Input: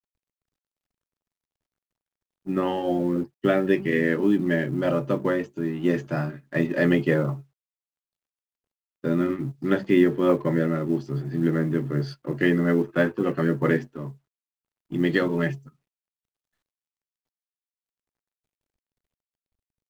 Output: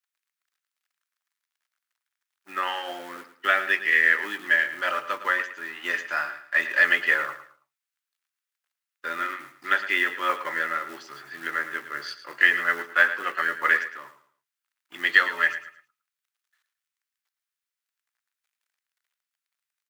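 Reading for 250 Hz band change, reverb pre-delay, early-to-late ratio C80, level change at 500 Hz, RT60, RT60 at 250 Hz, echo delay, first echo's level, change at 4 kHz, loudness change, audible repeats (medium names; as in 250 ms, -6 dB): -22.0 dB, no reverb, no reverb, -12.5 dB, no reverb, no reverb, 110 ms, -12.5 dB, +8.0 dB, +0.5 dB, 3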